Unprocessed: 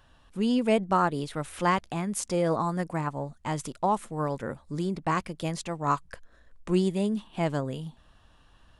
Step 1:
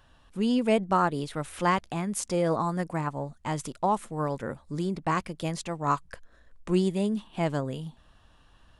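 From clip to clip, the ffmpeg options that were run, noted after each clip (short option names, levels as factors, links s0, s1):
-af anull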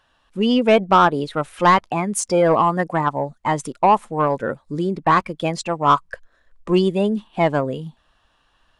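-filter_complex "[0:a]afftdn=nr=14:nf=-36,asplit=2[s0][s1];[s1]highpass=f=720:p=1,volume=4.47,asoftclip=type=tanh:threshold=0.282[s2];[s0][s2]amix=inputs=2:normalize=0,lowpass=f=5700:p=1,volume=0.501,volume=2.37"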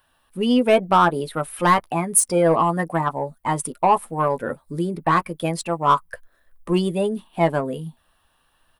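-filter_complex "[0:a]acrossover=split=2200[s0][s1];[s0]asplit=2[s2][s3];[s3]adelay=12,volume=0.473[s4];[s2][s4]amix=inputs=2:normalize=0[s5];[s1]aexciter=amount=8:drive=6.3:freq=9300[s6];[s5][s6]amix=inputs=2:normalize=0,volume=0.708"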